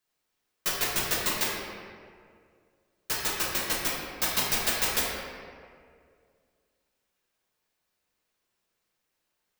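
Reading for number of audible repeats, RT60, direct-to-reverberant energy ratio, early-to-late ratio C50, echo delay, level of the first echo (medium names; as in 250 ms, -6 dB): no echo, 2.2 s, -6.5 dB, -0.5 dB, no echo, no echo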